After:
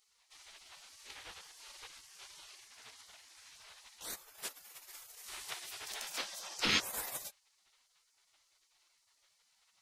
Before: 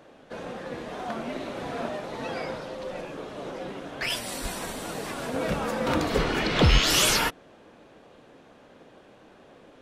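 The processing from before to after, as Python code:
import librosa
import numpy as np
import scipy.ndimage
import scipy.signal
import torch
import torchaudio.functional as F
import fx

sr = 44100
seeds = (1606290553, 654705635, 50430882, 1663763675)

y = fx.highpass(x, sr, hz=46.0, slope=6)
y = fx.peak_eq(y, sr, hz=610.0, db=-14.5, octaves=2.5)
y = fx.spec_gate(y, sr, threshold_db=-20, keep='weak')
y = y * librosa.db_to_amplitude(1.0)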